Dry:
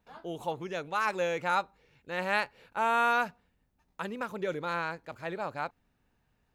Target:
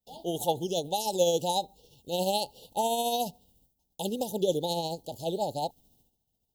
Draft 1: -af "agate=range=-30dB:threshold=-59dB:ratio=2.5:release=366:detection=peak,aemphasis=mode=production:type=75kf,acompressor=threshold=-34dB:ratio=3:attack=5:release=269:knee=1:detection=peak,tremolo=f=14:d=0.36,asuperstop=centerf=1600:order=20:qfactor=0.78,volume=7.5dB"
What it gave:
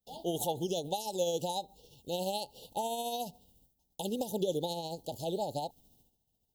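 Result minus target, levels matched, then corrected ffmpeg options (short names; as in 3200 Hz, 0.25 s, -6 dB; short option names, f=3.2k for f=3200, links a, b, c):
compressor: peak gain reduction +7.5 dB
-af "agate=range=-30dB:threshold=-59dB:ratio=2.5:release=366:detection=peak,aemphasis=mode=production:type=75kf,acompressor=threshold=-23dB:ratio=3:attack=5:release=269:knee=1:detection=peak,tremolo=f=14:d=0.36,asuperstop=centerf=1600:order=20:qfactor=0.78,volume=7.5dB"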